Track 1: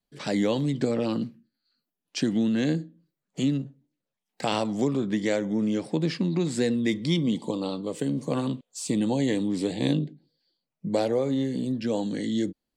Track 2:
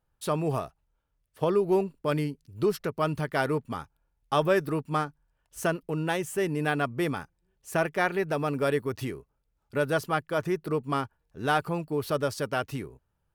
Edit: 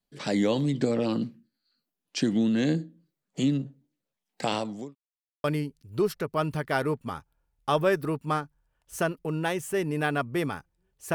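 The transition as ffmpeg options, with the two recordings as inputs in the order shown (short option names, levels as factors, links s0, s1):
-filter_complex "[0:a]apad=whole_dur=11.14,atrim=end=11.14,asplit=2[s0][s1];[s0]atrim=end=4.95,asetpts=PTS-STARTPTS,afade=t=out:st=4.41:d=0.54[s2];[s1]atrim=start=4.95:end=5.44,asetpts=PTS-STARTPTS,volume=0[s3];[1:a]atrim=start=2.08:end=7.78,asetpts=PTS-STARTPTS,afade=t=in:d=0.004:c=hsin[s4];[s2][s3][s4]concat=n=3:v=0:a=1"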